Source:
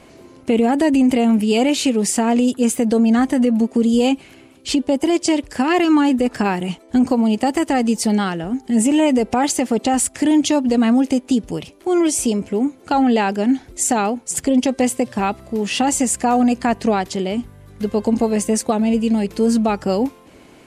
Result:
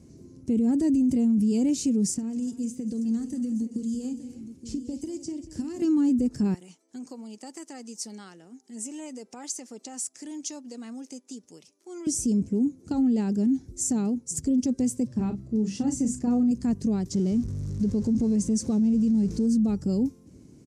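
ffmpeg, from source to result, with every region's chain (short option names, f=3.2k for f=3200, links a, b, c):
-filter_complex "[0:a]asettb=1/sr,asplit=3[a][b][c];[a]atrim=end=2.144[d];[b]atrim=start=2.14:end=5.82,asetpts=PTS-STARTPTS,afade=t=in:d=0.004:c=qsin,afade=t=out:st=3.676:d=0.004:c=qsin,acrossover=split=2000|4600[e][f][g];[e]acompressor=threshold=-27dB:ratio=4[h];[f]acompressor=threshold=-42dB:ratio=4[i];[g]acompressor=threshold=-40dB:ratio=4[j];[h][i][j]amix=inputs=3:normalize=0,aecho=1:1:49|190|285|873:0.188|0.178|0.178|0.237,atrim=end_sample=162288[k];[c]atrim=start=5.816[l];[d][k]acrossfade=d=0.004:c1=hsin:c2=qsin[m];[m][l]acrossfade=d=0.004:c1=qsin:c2=hsin,asettb=1/sr,asplit=3[n][o][p];[n]atrim=end=6.544[q];[o]atrim=start=6.54:end=12.07,asetpts=PTS-STARTPTS,afade=t=in:d=0.004:c=qsin,afade=t=out:st=5.526:d=0.004:c=qsin,highpass=860,highshelf=f=7.6k:g=-6[r];[p]atrim=start=12.066[s];[q][r]acrossfade=d=0.004:c1=hsin:c2=qsin[t];[t][s]acrossfade=d=0.004:c1=qsin:c2=hsin,asettb=1/sr,asplit=3[u][v][w];[u]atrim=end=15.074[x];[v]atrim=start=15.07:end=16.51,asetpts=PTS-STARTPTS,afade=t=in:d=0.004:c=qsin,afade=t=out:st=1.436:d=0.004:c=qsin,highshelf=f=5.7k:g=-11.5,bandreject=f=50:t=h:w=6,bandreject=f=100:t=h:w=6,bandreject=f=150:t=h:w=6,bandreject=f=200:t=h:w=6,bandreject=f=250:t=h:w=6,asplit=2[y][z];[z]adelay=37,volume=-9dB[aa];[y][aa]amix=inputs=2:normalize=0,atrim=end_sample=63504[ab];[w]atrim=start=16.506[ac];[x][ab]acrossfade=d=0.004:c1=hsin:c2=qsin[ad];[ad][ac]acrossfade=d=0.004:c1=qsin:c2=hsin,asettb=1/sr,asplit=3[ae][af][ag];[ae]atrim=end=17.114[ah];[af]atrim=start=17.11:end=19.47,asetpts=PTS-STARTPTS,afade=t=in:d=0.004:c=qsin,afade=t=out:st=2.356:d=0.004:c=qsin,aeval=exprs='val(0)+0.5*0.0422*sgn(val(0))':c=same,lowpass=7.8k[ai];[ag]atrim=start=19.466[aj];[ah][ai]acrossfade=d=0.004:c1=hsin:c2=qsin[ak];[ak][aj]acrossfade=d=0.004:c1=qsin:c2=hsin,firequalizer=gain_entry='entry(150,0);entry(680,-25);entry(3100,-27);entry(5700,-7);entry(12000,-17)':delay=0.05:min_phase=1,alimiter=limit=-19.5dB:level=0:latency=1:release=32,highpass=59,volume=2dB"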